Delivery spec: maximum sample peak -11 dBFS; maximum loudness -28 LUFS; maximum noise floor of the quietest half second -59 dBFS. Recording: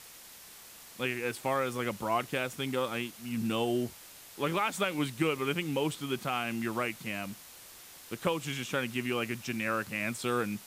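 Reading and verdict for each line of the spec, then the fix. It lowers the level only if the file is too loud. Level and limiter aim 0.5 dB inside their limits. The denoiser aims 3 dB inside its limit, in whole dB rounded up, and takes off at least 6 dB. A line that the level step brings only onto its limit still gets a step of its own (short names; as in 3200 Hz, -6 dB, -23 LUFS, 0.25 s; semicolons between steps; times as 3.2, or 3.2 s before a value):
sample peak -18.0 dBFS: OK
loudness -32.5 LUFS: OK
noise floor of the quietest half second -51 dBFS: fail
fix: denoiser 11 dB, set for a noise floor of -51 dBFS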